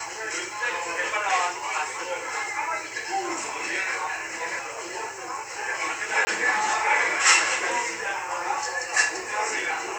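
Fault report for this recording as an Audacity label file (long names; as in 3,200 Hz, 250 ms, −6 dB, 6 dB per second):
6.250000	6.270000	drop-out 20 ms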